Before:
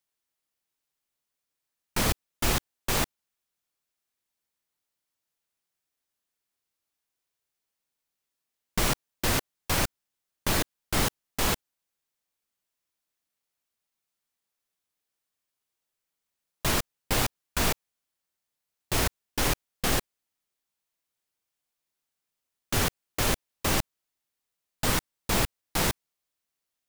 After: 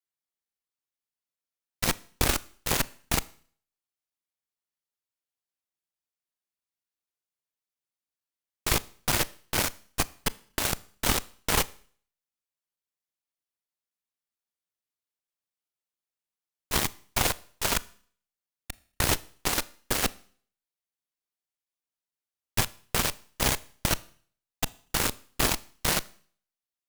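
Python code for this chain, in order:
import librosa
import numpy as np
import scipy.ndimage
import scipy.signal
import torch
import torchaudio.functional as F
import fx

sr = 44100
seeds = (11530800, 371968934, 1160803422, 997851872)

y = fx.local_reverse(x, sr, ms=228.0)
y = fx.cheby_harmonics(y, sr, harmonics=(4, 5, 6, 7), levels_db=(-14, -16, -7, -10), full_scale_db=-11.0)
y = fx.rev_schroeder(y, sr, rt60_s=0.5, comb_ms=26, drr_db=19.5)
y = y * librosa.db_to_amplitude(-2.5)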